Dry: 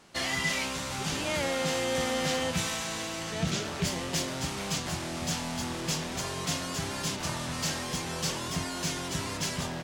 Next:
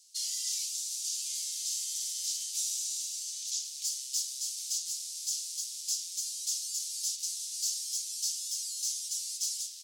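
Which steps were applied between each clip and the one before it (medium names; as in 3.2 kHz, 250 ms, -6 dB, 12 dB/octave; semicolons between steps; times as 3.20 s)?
inverse Chebyshev high-pass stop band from 1.2 kHz, stop band 70 dB; treble shelf 11 kHz -3.5 dB; in parallel at +2.5 dB: peak limiter -31.5 dBFS, peak gain reduction 8.5 dB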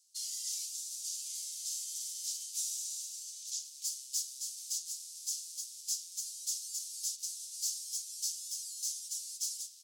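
treble shelf 4.9 kHz +9 dB; upward expansion 1.5:1, over -38 dBFS; trim -8 dB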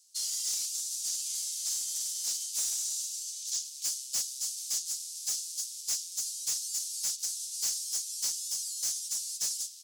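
hard clipper -33 dBFS, distortion -13 dB; trim +6.5 dB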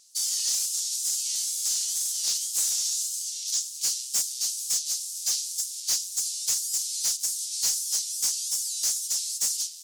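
wow and flutter 140 cents; trim +6 dB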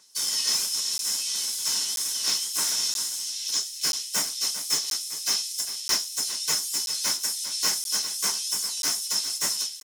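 delay 398 ms -12 dB; reverberation RT60 0.25 s, pre-delay 3 ms, DRR 0 dB; crackling interface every 0.98 s, samples 512, zero, from 0.98 s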